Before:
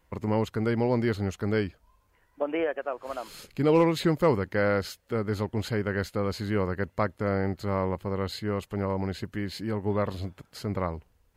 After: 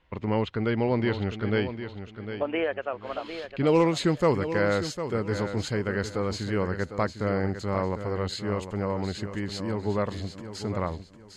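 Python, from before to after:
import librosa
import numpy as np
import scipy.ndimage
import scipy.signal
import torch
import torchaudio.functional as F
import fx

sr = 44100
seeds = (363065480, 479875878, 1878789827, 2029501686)

y = fx.lowpass_res(x, sr, hz=fx.steps((0.0, 3300.0), (3.67, 7200.0)), q=1.9)
y = fx.echo_feedback(y, sr, ms=753, feedback_pct=28, wet_db=-10.0)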